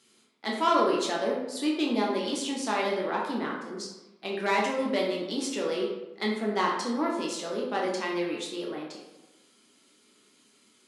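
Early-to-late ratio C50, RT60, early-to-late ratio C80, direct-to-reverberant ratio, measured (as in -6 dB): 3.0 dB, 1.0 s, 6.0 dB, -3.5 dB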